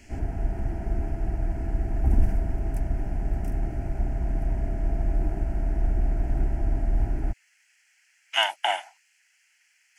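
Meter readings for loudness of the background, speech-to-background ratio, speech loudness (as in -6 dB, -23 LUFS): -29.5 LUFS, 3.5 dB, -26.0 LUFS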